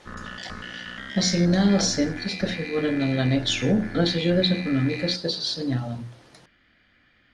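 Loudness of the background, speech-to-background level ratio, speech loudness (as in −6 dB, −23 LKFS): −35.5 LKFS, 12.0 dB, −23.5 LKFS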